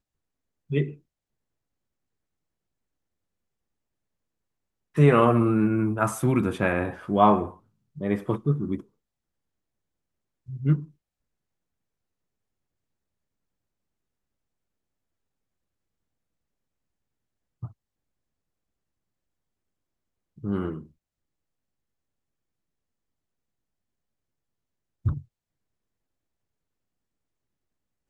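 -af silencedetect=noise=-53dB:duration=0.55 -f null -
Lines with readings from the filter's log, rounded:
silence_start: 0.00
silence_end: 0.70 | silence_duration: 0.70
silence_start: 0.99
silence_end: 4.95 | silence_duration: 3.95
silence_start: 8.86
silence_end: 10.47 | silence_duration: 1.61
silence_start: 10.91
silence_end: 17.62 | silence_duration: 6.71
silence_start: 17.73
silence_end: 20.38 | silence_duration: 2.65
silence_start: 20.91
silence_end: 25.05 | silence_duration: 4.14
silence_start: 25.25
silence_end: 28.09 | silence_duration: 2.84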